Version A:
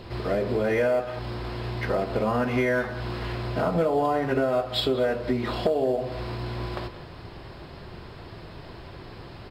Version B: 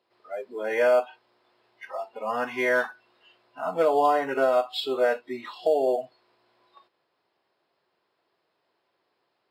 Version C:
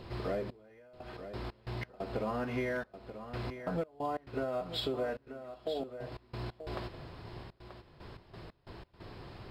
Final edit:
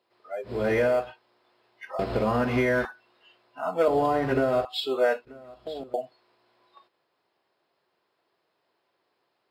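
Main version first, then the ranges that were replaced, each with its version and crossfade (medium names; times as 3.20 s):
B
0.55–1.02 s: from A, crossfade 0.24 s
1.99–2.85 s: from A
3.88–4.65 s: from A
5.25–5.94 s: from C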